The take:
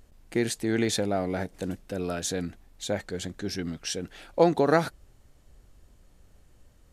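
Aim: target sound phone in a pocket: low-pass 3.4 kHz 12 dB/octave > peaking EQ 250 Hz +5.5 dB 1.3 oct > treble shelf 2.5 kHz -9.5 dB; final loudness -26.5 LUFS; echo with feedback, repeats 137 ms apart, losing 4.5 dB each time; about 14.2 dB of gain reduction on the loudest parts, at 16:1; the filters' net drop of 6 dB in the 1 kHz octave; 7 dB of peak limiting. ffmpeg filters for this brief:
-af "equalizer=f=1000:t=o:g=-8.5,acompressor=threshold=0.0282:ratio=16,alimiter=level_in=1.5:limit=0.0631:level=0:latency=1,volume=0.668,lowpass=3400,equalizer=f=250:t=o:w=1.3:g=5.5,highshelf=f=2500:g=-9.5,aecho=1:1:137|274|411|548|685|822|959|1096|1233:0.596|0.357|0.214|0.129|0.0772|0.0463|0.0278|0.0167|0.01,volume=2.82"

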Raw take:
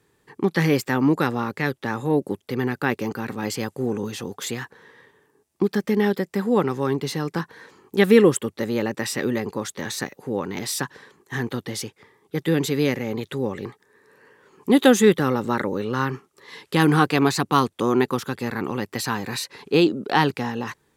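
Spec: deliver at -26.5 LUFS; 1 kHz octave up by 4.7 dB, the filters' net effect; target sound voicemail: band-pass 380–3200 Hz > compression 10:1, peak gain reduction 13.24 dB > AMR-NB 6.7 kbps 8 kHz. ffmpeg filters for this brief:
-af "highpass=380,lowpass=3200,equalizer=f=1000:t=o:g=6,acompressor=threshold=0.0794:ratio=10,volume=1.68" -ar 8000 -c:a libopencore_amrnb -b:a 6700

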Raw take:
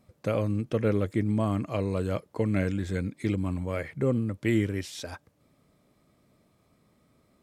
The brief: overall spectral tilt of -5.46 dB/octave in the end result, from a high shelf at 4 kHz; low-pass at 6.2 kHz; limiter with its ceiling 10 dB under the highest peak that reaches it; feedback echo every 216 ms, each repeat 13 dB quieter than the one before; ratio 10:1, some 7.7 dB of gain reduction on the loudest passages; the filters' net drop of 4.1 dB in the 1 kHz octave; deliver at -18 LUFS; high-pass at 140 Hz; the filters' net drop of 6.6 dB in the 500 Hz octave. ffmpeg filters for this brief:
-af "highpass=140,lowpass=6200,equalizer=f=500:t=o:g=-7.5,equalizer=f=1000:t=o:g=-3.5,highshelf=f=4000:g=4,acompressor=threshold=0.0251:ratio=10,alimiter=level_in=2.51:limit=0.0631:level=0:latency=1,volume=0.398,aecho=1:1:216|432|648:0.224|0.0493|0.0108,volume=15.8"

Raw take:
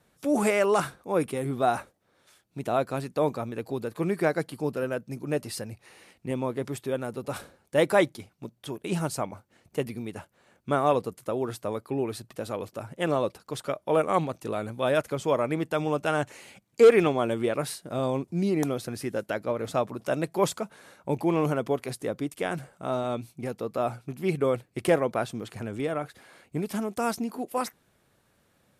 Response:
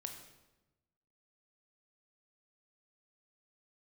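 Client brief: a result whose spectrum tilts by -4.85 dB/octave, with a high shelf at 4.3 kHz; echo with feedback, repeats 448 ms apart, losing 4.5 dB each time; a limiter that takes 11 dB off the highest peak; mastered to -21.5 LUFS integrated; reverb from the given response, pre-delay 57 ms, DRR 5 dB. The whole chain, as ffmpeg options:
-filter_complex "[0:a]highshelf=f=4300:g=-7.5,alimiter=limit=0.1:level=0:latency=1,aecho=1:1:448|896|1344|1792|2240|2688|3136|3584|4032:0.596|0.357|0.214|0.129|0.0772|0.0463|0.0278|0.0167|0.01,asplit=2[s0][s1];[1:a]atrim=start_sample=2205,adelay=57[s2];[s1][s2]afir=irnorm=-1:irlink=0,volume=0.794[s3];[s0][s3]amix=inputs=2:normalize=0,volume=2.51"

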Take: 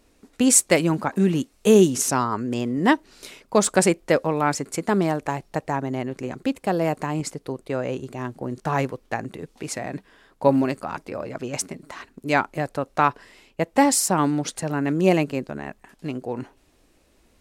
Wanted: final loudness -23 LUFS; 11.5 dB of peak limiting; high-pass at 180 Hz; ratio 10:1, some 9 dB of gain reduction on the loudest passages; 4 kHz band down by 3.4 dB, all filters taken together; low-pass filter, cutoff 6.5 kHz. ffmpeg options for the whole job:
-af "highpass=180,lowpass=6500,equalizer=f=4000:t=o:g=-4,acompressor=threshold=0.1:ratio=10,volume=2.66,alimiter=limit=0.299:level=0:latency=1"

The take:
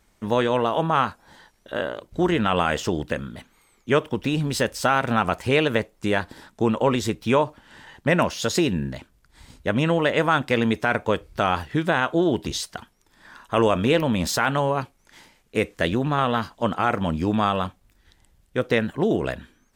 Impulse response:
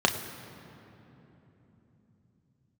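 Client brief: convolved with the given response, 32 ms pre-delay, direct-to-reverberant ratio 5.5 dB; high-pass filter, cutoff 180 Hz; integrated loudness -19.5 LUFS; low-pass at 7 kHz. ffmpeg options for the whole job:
-filter_complex "[0:a]highpass=180,lowpass=7000,asplit=2[s0][s1];[1:a]atrim=start_sample=2205,adelay=32[s2];[s1][s2]afir=irnorm=-1:irlink=0,volume=0.106[s3];[s0][s3]amix=inputs=2:normalize=0,volume=1.41"

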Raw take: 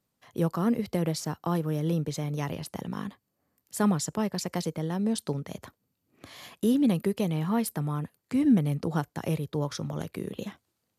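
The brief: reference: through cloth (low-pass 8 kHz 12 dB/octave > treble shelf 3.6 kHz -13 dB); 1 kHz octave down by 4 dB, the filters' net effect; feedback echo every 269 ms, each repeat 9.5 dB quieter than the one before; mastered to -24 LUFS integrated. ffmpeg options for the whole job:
-af "lowpass=8000,equalizer=f=1000:t=o:g=-4,highshelf=f=3600:g=-13,aecho=1:1:269|538|807|1076:0.335|0.111|0.0365|0.012,volume=1.88"

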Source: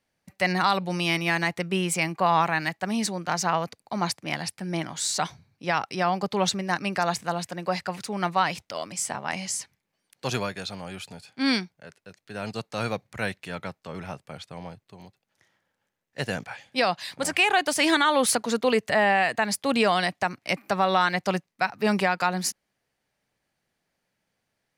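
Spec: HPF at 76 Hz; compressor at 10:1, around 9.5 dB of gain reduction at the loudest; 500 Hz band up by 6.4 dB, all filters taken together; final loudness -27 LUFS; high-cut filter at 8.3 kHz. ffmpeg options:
-af "highpass=76,lowpass=8300,equalizer=f=500:t=o:g=8,acompressor=threshold=0.0891:ratio=10,volume=1.19"

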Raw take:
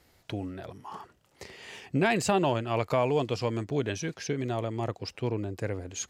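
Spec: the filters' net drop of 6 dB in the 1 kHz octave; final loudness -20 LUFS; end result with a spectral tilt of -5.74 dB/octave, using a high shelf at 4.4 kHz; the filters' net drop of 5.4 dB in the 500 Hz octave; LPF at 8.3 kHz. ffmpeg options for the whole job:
-af "lowpass=8300,equalizer=f=500:t=o:g=-5.5,equalizer=f=1000:t=o:g=-5.5,highshelf=f=4400:g=-7,volume=4.47"

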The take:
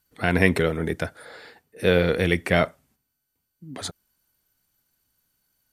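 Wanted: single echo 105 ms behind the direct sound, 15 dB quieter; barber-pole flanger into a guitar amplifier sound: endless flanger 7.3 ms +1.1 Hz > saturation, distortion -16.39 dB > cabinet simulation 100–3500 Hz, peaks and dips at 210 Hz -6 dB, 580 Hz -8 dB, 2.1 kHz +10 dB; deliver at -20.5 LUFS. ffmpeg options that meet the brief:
-filter_complex "[0:a]aecho=1:1:105:0.178,asplit=2[s0][s1];[s1]adelay=7.3,afreqshift=1.1[s2];[s0][s2]amix=inputs=2:normalize=1,asoftclip=threshold=0.178,highpass=100,equalizer=f=210:t=q:w=4:g=-6,equalizer=f=580:t=q:w=4:g=-8,equalizer=f=2100:t=q:w=4:g=10,lowpass=f=3500:w=0.5412,lowpass=f=3500:w=1.3066,volume=1.88"

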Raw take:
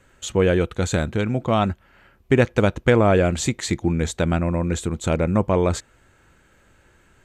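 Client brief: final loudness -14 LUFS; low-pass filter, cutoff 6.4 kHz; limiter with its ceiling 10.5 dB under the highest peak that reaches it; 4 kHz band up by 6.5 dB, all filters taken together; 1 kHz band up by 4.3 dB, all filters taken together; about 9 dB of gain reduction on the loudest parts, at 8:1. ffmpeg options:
-af "lowpass=6400,equalizer=f=1000:t=o:g=5.5,equalizer=f=4000:t=o:g=8,acompressor=threshold=0.112:ratio=8,volume=5.62,alimiter=limit=0.708:level=0:latency=1"

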